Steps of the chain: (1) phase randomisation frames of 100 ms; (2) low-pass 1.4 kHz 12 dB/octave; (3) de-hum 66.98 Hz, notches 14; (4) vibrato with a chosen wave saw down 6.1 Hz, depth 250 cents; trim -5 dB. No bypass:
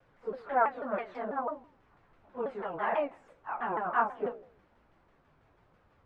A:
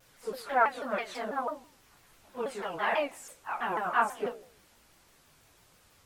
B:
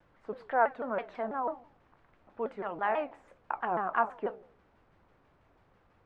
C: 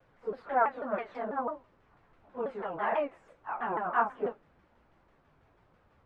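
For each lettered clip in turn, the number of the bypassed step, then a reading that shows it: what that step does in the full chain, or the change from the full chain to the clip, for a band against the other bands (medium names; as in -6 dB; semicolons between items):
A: 2, 2 kHz band +4.5 dB; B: 1, crest factor change +2.5 dB; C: 3, momentary loudness spread change -1 LU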